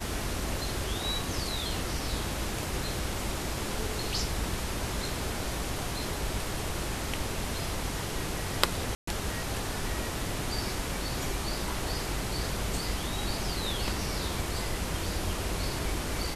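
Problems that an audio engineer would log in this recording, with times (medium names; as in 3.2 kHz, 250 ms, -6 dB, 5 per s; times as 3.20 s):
8.95–9.07 s: dropout 124 ms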